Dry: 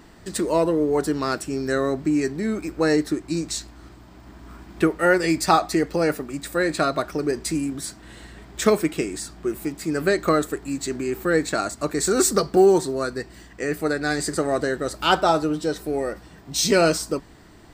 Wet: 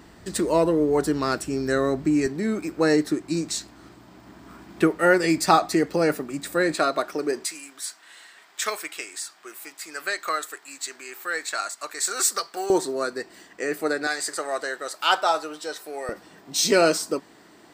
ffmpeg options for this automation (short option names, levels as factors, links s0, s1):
-af "asetnsamples=n=441:p=0,asendcmd='2.26 highpass f 130;6.74 highpass f 320;7.45 highpass f 1100;12.7 highpass f 320;14.07 highpass f 730;16.09 highpass f 250',highpass=43"